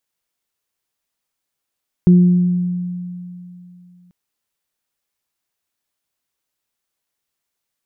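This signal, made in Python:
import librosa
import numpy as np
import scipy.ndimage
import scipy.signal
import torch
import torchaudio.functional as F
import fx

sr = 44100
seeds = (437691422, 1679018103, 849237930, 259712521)

y = fx.additive(sr, length_s=2.04, hz=178.0, level_db=-5.0, upper_db=(-12.5,), decay_s=2.9, upper_decays_s=(1.1,))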